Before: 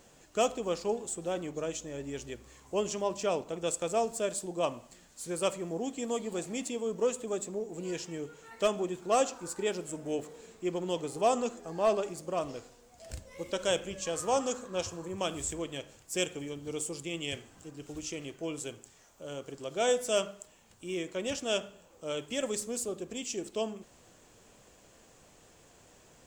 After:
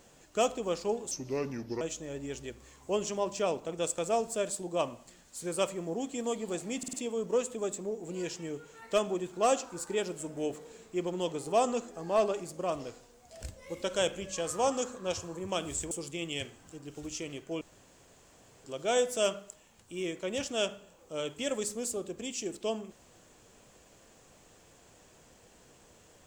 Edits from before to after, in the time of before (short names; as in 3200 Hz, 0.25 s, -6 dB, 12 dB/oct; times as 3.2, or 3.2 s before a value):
1.11–1.65 speed 77%
6.62 stutter 0.05 s, 4 plays
15.6–16.83 cut
18.53–19.56 room tone